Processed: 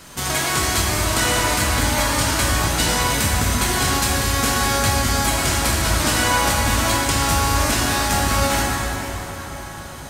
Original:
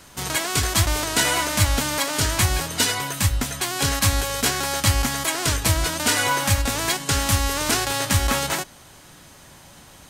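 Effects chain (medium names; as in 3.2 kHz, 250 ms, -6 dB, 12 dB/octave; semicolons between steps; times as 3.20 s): compression, threshold -24 dBFS, peak gain reduction 10.5 dB; bit crusher 12-bit; plate-style reverb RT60 4.9 s, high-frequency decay 0.55×, DRR -5 dB; trim +3.5 dB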